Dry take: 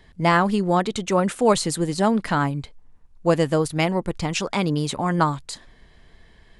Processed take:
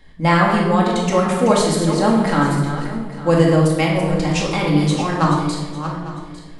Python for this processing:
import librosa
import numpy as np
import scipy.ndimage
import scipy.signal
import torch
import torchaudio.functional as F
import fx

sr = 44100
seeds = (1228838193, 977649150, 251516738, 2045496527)

y = fx.reverse_delay_fb(x, sr, ms=426, feedback_pct=43, wet_db=-9.5)
y = fx.room_shoebox(y, sr, seeds[0], volume_m3=710.0, walls='mixed', distance_m=2.2)
y = F.gain(torch.from_numpy(y), -1.0).numpy()